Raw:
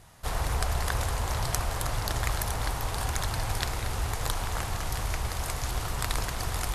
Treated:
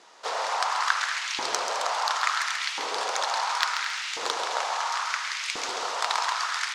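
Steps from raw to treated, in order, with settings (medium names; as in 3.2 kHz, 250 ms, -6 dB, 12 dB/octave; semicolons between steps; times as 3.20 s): cabinet simulation 160–6000 Hz, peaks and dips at 200 Hz +4 dB, 480 Hz +4 dB, 940 Hz +5 dB, 1.3 kHz +4 dB; Chebyshev shaper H 4 -25 dB, 6 -30 dB, 8 -32 dB, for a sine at -8.5 dBFS; tilt EQ +3 dB/octave; delay 211 ms -12.5 dB; LFO high-pass saw up 0.72 Hz 310–2700 Hz; on a send: feedback delay 135 ms, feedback 43%, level -8 dB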